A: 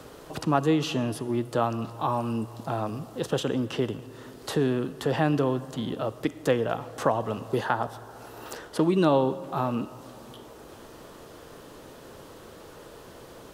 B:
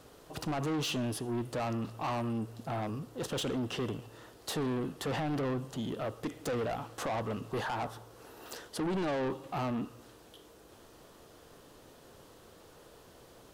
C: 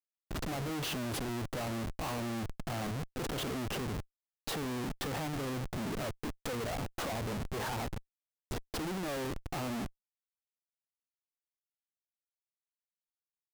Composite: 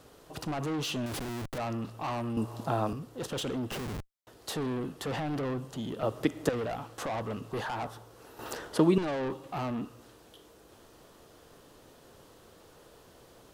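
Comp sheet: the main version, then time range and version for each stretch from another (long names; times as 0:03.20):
B
0:01.06–0:01.58: punch in from C
0:02.37–0:02.93: punch in from A
0:03.71–0:04.27: punch in from C
0:06.03–0:06.49: punch in from A
0:08.39–0:08.98: punch in from A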